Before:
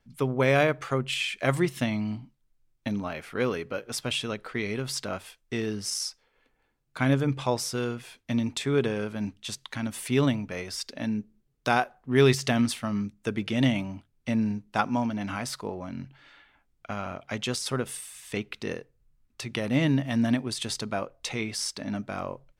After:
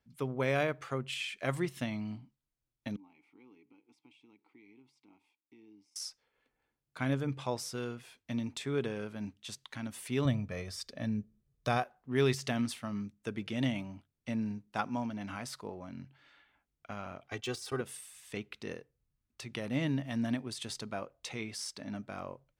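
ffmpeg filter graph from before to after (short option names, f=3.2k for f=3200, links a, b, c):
-filter_complex "[0:a]asettb=1/sr,asplit=3[a][b][c];[a]atrim=end=2.964[d];[b]atrim=start=2.96:end=5.96,asetpts=PTS-STARTPTS,afade=t=in:d=0.004:c=qsin,afade=t=out:st=2.996:d=0.004:c=qsin,bass=f=250:g=1,treble=f=4k:g=8,acompressor=threshold=-41dB:ratio=2:attack=3.2:release=140:knee=1:detection=peak,asplit=3[e][f][g];[e]bandpass=f=300:t=q:w=8,volume=0dB[h];[f]bandpass=f=870:t=q:w=8,volume=-6dB[i];[g]bandpass=f=2.24k:t=q:w=8,volume=-9dB[j];[h][i][j]amix=inputs=3:normalize=0[k];[c]atrim=start=5.956[l];[d][k]acrossfade=d=0.004:c1=hsin:c2=qsin[m];[m][l]acrossfade=d=0.004:c1=qsin:c2=hsin,asettb=1/sr,asplit=3[n][o][p];[n]atrim=end=10.254[q];[o]atrim=start=10.25:end=11.83,asetpts=PTS-STARTPTS,afade=t=in:d=0.004:c=qsin,afade=t=out:st=1.576:d=0.004:c=qsin,lowshelf=f=220:g=10,bandreject=f=2.8k:w=17,aecho=1:1:1.7:0.39,atrim=end_sample=69678[r];[p]atrim=start=11.826[s];[q][r]acrossfade=d=0.004:c1=hsin:c2=qsin[t];[t][s]acrossfade=d=0.004:c1=qsin:c2=hsin,asettb=1/sr,asplit=3[u][v][w];[u]atrim=end=17.284[x];[v]atrim=start=17.28:end=17.81,asetpts=PTS-STARTPTS,afade=t=in:d=0.004:c=qsin,afade=t=out:st=0.526:d=0.004:c=qsin,agate=range=-11dB:threshold=-37dB:ratio=16:release=100:detection=peak,aecho=1:1:2.6:0.95,atrim=end_sample=23373,deesser=0.65[y];[w]atrim=start=17.806[z];[x][y]acrossfade=d=0.004:c1=hsin:c2=qsin[aa];[aa][z]acrossfade=d=0.004:c1=qsin:c2=hsin,highpass=44,deesser=0.5,volume=-8.5dB"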